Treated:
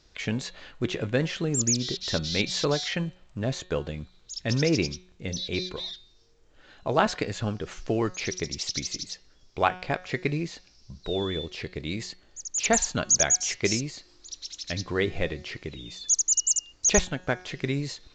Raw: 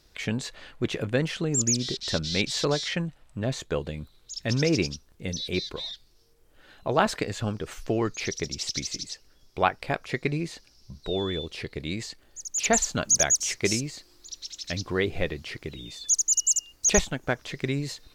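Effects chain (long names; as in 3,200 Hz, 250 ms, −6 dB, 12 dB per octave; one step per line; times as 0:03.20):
hum removal 182.7 Hz, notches 24
mu-law 128 kbit/s 16,000 Hz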